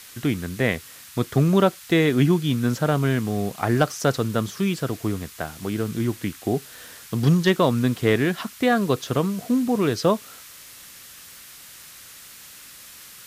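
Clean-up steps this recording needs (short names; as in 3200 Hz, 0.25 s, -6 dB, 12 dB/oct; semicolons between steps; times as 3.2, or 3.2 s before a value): clip repair -8 dBFS; noise print and reduce 23 dB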